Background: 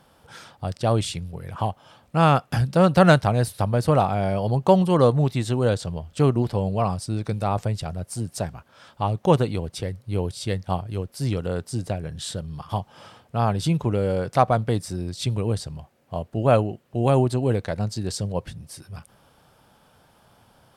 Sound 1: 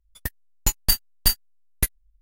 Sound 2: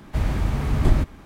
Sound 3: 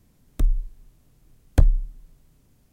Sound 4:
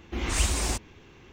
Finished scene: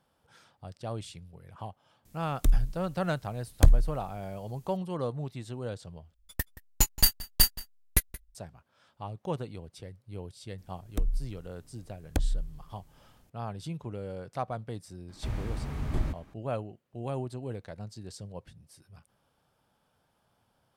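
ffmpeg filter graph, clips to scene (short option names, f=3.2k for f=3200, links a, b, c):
-filter_complex "[3:a]asplit=2[a][b];[0:a]volume=-15.5dB[c];[a]highshelf=f=2.9k:g=9.5[d];[1:a]asplit=2[e][f];[f]adelay=174.9,volume=-18dB,highshelf=f=4k:g=-3.94[g];[e][g]amix=inputs=2:normalize=0[h];[b]acompressor=threshold=-21dB:ratio=6:attack=3.2:release=140:knee=1:detection=peak[i];[c]asplit=2[j][k];[j]atrim=end=6.144[l];[h]atrim=end=2.21,asetpts=PTS-STARTPTS,volume=-2dB[m];[k]atrim=start=8.346[n];[d]atrim=end=2.72,asetpts=PTS-STARTPTS,volume=-2.5dB,afade=t=in:d=0.004:c=hsin,afade=t=out:st=2.716:d=0.004:c=hsin,adelay=2050[o];[i]atrim=end=2.72,asetpts=PTS-STARTPTS,volume=-1.5dB,afade=t=in:d=0.004:c=hsin,afade=t=out:st=2.716:d=0.004:c=hsin,adelay=466578S[p];[2:a]atrim=end=1.25,asetpts=PTS-STARTPTS,volume=-11.5dB,afade=t=in:d=0.004:c=hsin,afade=t=out:st=1.246:d=0.004:c=hsin,adelay=15090[q];[l][m]acrossfade=d=0.004:c1=hsin:c2=hsin[r];[r][n]acrossfade=d=0.004:c1=hsin:c2=hsin[s];[s][o][p][q]amix=inputs=4:normalize=0"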